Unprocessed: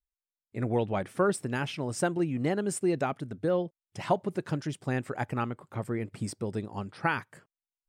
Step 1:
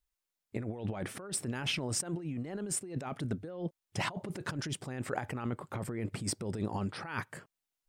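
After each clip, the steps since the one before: negative-ratio compressor -37 dBFS, ratio -1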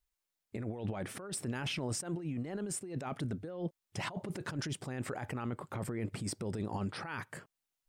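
limiter -28 dBFS, peak gain reduction 9 dB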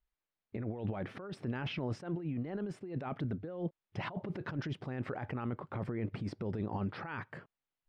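air absorption 290 m; gain +1 dB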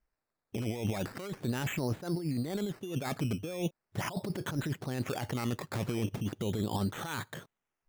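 decimation with a swept rate 12×, swing 60% 0.38 Hz; gain +4 dB

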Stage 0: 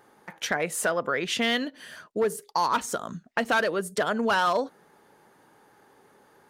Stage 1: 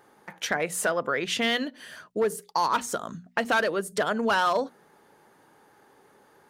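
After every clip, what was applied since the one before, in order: notches 60/120/180/240 Hz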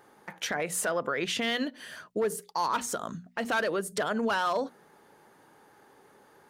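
limiter -20.5 dBFS, peak gain reduction 9 dB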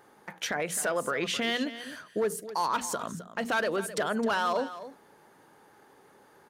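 echo 0.261 s -13.5 dB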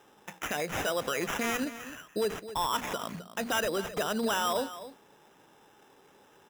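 sample-and-hold 10×; gain -1.5 dB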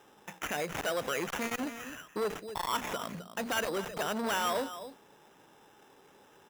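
core saturation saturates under 810 Hz

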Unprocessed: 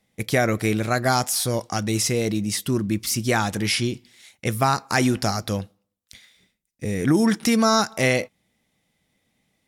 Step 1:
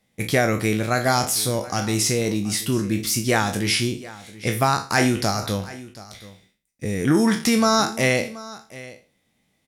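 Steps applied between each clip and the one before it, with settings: spectral trails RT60 0.35 s; echo 0.728 s -18.5 dB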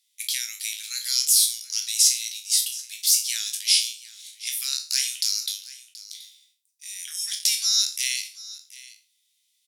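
inverse Chebyshev high-pass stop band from 750 Hz, stop band 70 dB; gain +5.5 dB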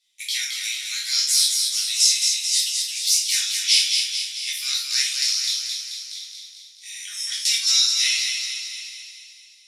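air absorption 57 m; thinning echo 0.218 s, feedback 58%, high-pass 920 Hz, level -4.5 dB; shoebox room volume 290 m³, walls furnished, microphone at 3.5 m

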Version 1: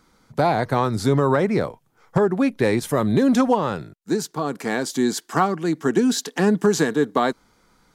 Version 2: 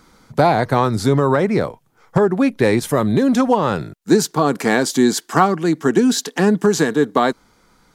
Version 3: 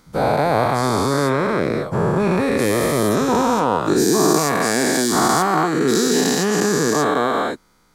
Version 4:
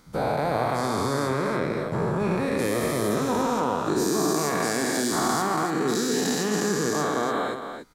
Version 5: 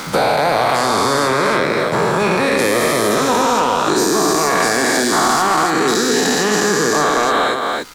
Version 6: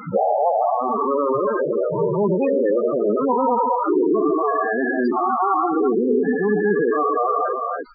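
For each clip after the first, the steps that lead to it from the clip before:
vocal rider within 5 dB 0.5 s; gain +4.5 dB
spectral dilation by 0.48 s; high shelf 9000 Hz +6 dB; gain -9.5 dB
compressor 1.5:1, threshold -29 dBFS, peak gain reduction 6.5 dB; on a send: loudspeakers at several distances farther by 18 m -12 dB, 97 m -8 dB; on the sum: gain -2.5 dB
crackle 460/s -49 dBFS; overdrive pedal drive 13 dB, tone 6300 Hz, clips at -9.5 dBFS; three-band squash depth 70%; gain +6 dB
loudest bins only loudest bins 8

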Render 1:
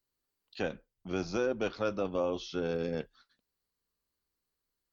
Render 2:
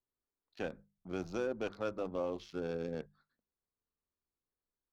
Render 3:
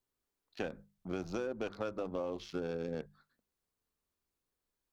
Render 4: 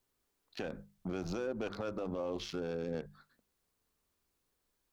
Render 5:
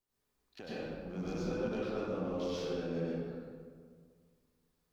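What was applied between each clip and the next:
Wiener smoothing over 15 samples; notches 50/100/150/200 Hz; gain -5 dB
compressor, threshold -39 dBFS, peak gain reduction 8 dB; gain +5.5 dB
limiter -35 dBFS, peak gain reduction 11 dB; gain +6.5 dB
reverb RT60 1.9 s, pre-delay 93 ms, DRR -9.5 dB; gain -9 dB

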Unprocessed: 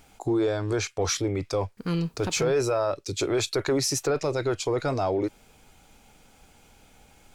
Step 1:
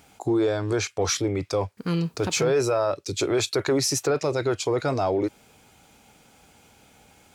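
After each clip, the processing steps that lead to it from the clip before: HPF 78 Hz; gain +2 dB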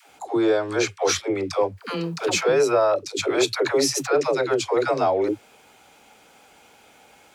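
tone controls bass -14 dB, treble -5 dB; dispersion lows, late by 0.106 s, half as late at 400 Hz; gain +5 dB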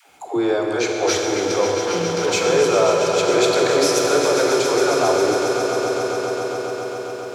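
swelling echo 0.136 s, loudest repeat 5, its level -11 dB; Schroeder reverb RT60 3.5 s, combs from 31 ms, DRR 1.5 dB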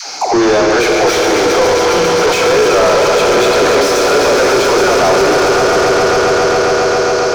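overdrive pedal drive 31 dB, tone 1800 Hz, clips at -4.5 dBFS; band noise 4100–6500 Hz -29 dBFS; gain +1.5 dB

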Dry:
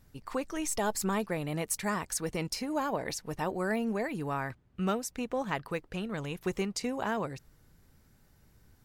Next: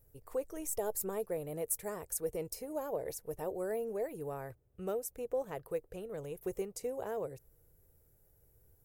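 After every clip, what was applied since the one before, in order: EQ curve 110 Hz 0 dB, 230 Hz -12 dB, 470 Hz +7 dB, 1000 Hz -9 dB, 4400 Hz -13 dB, 13000 Hz +10 dB; gain -5 dB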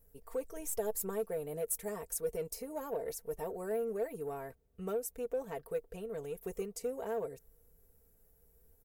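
comb 4.4 ms, depth 71%; in parallel at -6 dB: soft clip -34 dBFS, distortion -10 dB; on the sum: gain -4.5 dB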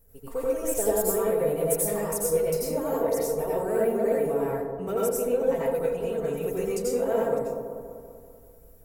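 dark delay 0.194 s, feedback 57%, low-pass 870 Hz, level -4.5 dB; plate-style reverb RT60 0.51 s, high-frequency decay 0.75×, pre-delay 75 ms, DRR -5.5 dB; gain +5 dB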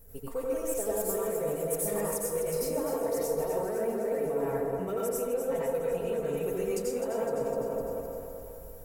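reverse; compressor 6:1, threshold -35 dBFS, peak gain reduction 15.5 dB; reverse; thinning echo 0.254 s, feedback 63%, high-pass 320 Hz, level -8.5 dB; gain +6 dB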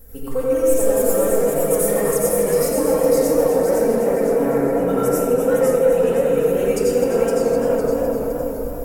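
shoebox room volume 2500 m³, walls mixed, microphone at 2.1 m; warbling echo 0.512 s, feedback 30%, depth 131 cents, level -4 dB; gain +7.5 dB

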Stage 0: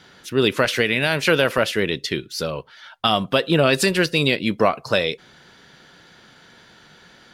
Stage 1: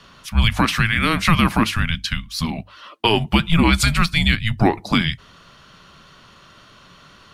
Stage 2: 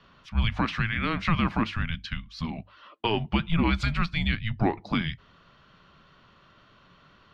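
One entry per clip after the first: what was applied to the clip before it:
frequency shift -330 Hz; notches 50/100 Hz; gain +2 dB
air absorption 200 m; gain -8 dB

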